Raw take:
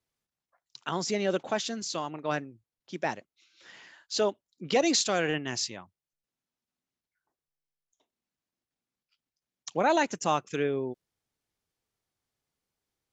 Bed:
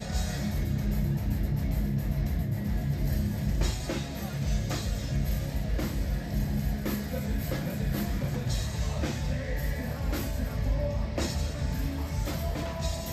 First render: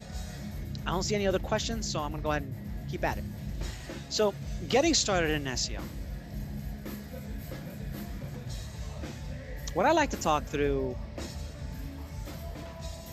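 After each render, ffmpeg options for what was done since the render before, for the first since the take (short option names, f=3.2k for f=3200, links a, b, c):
-filter_complex "[1:a]volume=-8.5dB[a];[0:a][a]amix=inputs=2:normalize=0"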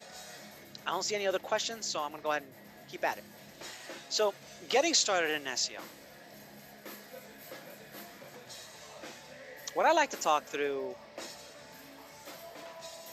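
-af "highpass=480"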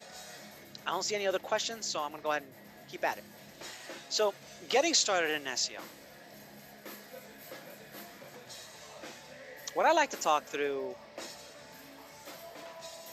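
-af anull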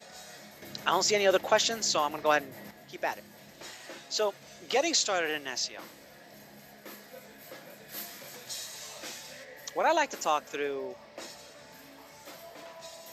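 -filter_complex "[0:a]asettb=1/sr,asplit=3[a][b][c];[a]atrim=end=0.624[d];[b]atrim=start=0.62:end=2.71,asetpts=PTS-STARTPTS,afade=t=in:d=0.004:c=qsin,afade=t=out:st=2.086:d=0.004:c=qsin,acontrast=85[e];[c]atrim=start=2.706[f];[d][e]acrossfade=d=0.004:c1=hsin:c2=qsin[g];[g][f]acrossfade=d=0.004:c1=qsin:c2=hsin,asettb=1/sr,asplit=3[h][i][j];[h]atrim=end=5.194[k];[i]atrim=start=5.19:end=5.88,asetpts=PTS-STARTPTS,afade=t=in:d=0.004:c=qsin,afade=t=out:st=0.686:d=0.004:c=qsin,bandreject=f=7.1k:w=9.7[l];[j]atrim=start=5.876[m];[k][l]acrossfade=d=0.004:c1=hsin:c2=qsin[n];[n][m]acrossfade=d=0.004:c1=qsin:c2=hsin,asplit=3[o][p][q];[o]afade=t=out:st=7.88:d=0.02[r];[p]highshelf=f=2.8k:g=12,afade=t=in:st=7.88:d=0.02,afade=t=out:st=9.43:d=0.02[s];[q]afade=t=in:st=9.43:d=0.02[t];[r][s][t]amix=inputs=3:normalize=0"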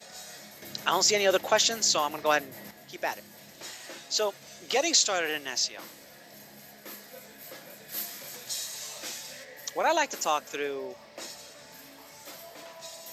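-af "highpass=57,equalizer=f=13k:t=o:w=2.4:g=6.5"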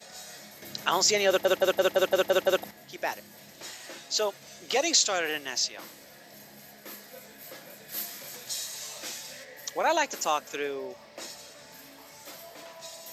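-filter_complex "[0:a]asplit=9[a][b][c][d][e][f][g][h][i];[a]atrim=end=1.452[j];[b]atrim=start=1.278:end=1.452[k];[c]atrim=start=1.278:end=1.452[l];[d]atrim=start=1.278:end=1.452[m];[e]atrim=start=1.278:end=1.452[n];[f]atrim=start=1.278:end=1.452[o];[g]atrim=start=1.278:end=1.452[p];[h]atrim=start=1.278:end=1.452[q];[i]atrim=start=2.638[r];[j][k]acrossfade=d=0.004:c1=hsin:c2=hsin[s];[s][l]acrossfade=d=0.004:c1=hsin:c2=hsin[t];[t][m]acrossfade=d=0.004:c1=hsin:c2=hsin[u];[u][n]acrossfade=d=0.004:c1=hsin:c2=hsin[v];[v][o]acrossfade=d=0.004:c1=hsin:c2=hsin[w];[w][p]acrossfade=d=0.004:c1=hsin:c2=hsin[x];[x][q]acrossfade=d=0.004:c1=hsin:c2=hsin[y];[y][r]acrossfade=d=0.004:c1=hsin:c2=hsin"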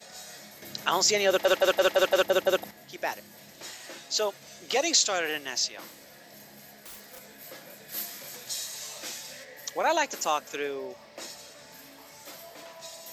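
-filter_complex "[0:a]asettb=1/sr,asplit=3[a][b][c];[a]atrim=end=1.394[d];[b]atrim=start=1.39:end=2.23,asetpts=PTS-STARTPTS,afade=t=in:d=0.004:c=qsin,afade=t=out:st=0.836:d=0.004:c=qsin,asplit=2[e][f];[f]highpass=f=720:p=1,volume=11dB,asoftclip=type=tanh:threshold=-12dB[g];[e][g]amix=inputs=2:normalize=0,lowpass=f=6.2k:p=1,volume=-6dB[h];[c]atrim=start=2.226[i];[d][h]acrossfade=d=0.004:c1=hsin:c2=qsin[j];[j][i]acrossfade=d=0.004:c1=qsin:c2=hsin,asettb=1/sr,asplit=3[k][l][m];[k]atrim=end=5.904[n];[l]atrim=start=5.9:end=7.23,asetpts=PTS-STARTPTS,afade=t=in:d=0.004:c=qsin,afade=t=out:st=1.326:d=0.004:c=qsin,aeval=exprs='(mod(84.1*val(0)+1,2)-1)/84.1':c=same[o];[m]atrim=start=7.226[p];[n][o]acrossfade=d=0.004:c1=hsin:c2=qsin[q];[q][p]acrossfade=d=0.004:c1=qsin:c2=hsin"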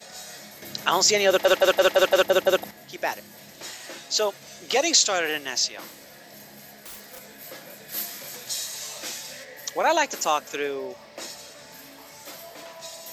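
-af "volume=4dB"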